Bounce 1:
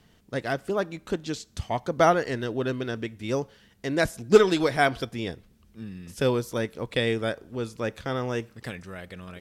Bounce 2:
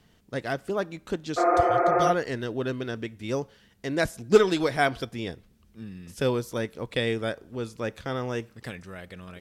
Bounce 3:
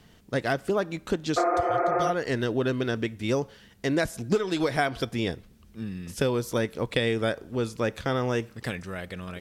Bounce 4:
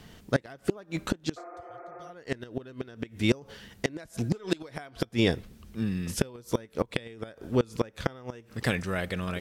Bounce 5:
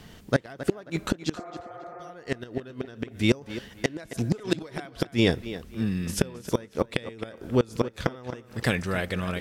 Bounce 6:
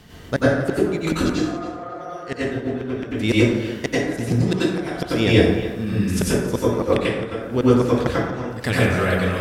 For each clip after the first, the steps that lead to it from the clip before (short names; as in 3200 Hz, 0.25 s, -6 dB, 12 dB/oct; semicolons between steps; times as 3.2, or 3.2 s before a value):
spectral repair 1.4–2.07, 210–2600 Hz after; gain -1.5 dB
compressor 16:1, threshold -26 dBFS, peak gain reduction 16.5 dB; gain +5.5 dB
flipped gate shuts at -17 dBFS, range -25 dB; gain +5 dB
tape echo 0.269 s, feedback 29%, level -12.5 dB, low-pass 4500 Hz; gain +2.5 dB
plate-style reverb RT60 0.94 s, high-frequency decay 0.5×, pre-delay 80 ms, DRR -7.5 dB